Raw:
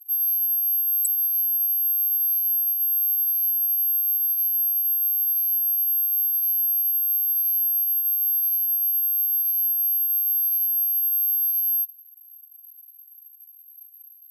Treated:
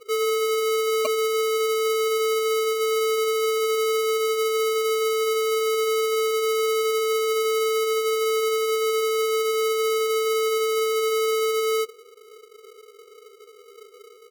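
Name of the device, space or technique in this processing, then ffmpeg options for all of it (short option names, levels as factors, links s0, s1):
crushed at another speed: -af "asetrate=35280,aresample=44100,acrusher=samples=32:mix=1:aa=0.000001,asetrate=55125,aresample=44100"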